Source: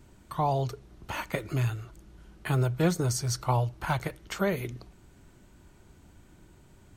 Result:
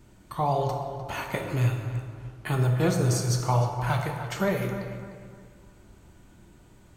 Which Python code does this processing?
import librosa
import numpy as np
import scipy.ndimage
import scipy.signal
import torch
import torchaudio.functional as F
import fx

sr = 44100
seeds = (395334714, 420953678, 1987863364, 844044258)

p1 = x + fx.echo_filtered(x, sr, ms=302, feedback_pct=36, hz=3300.0, wet_db=-10.5, dry=0)
y = fx.rev_plate(p1, sr, seeds[0], rt60_s=1.5, hf_ratio=0.6, predelay_ms=0, drr_db=2.5)